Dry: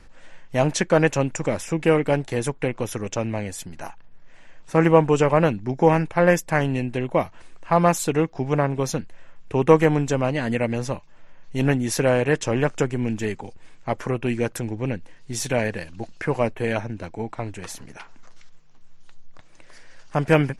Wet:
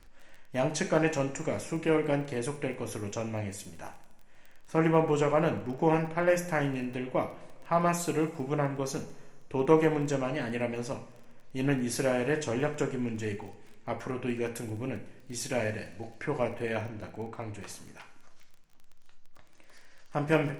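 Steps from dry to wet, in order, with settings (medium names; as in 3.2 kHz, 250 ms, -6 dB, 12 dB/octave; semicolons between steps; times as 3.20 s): two-slope reverb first 0.48 s, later 2.1 s, from -18 dB, DRR 4.5 dB; crackle 17 per s -32 dBFS; trim -9 dB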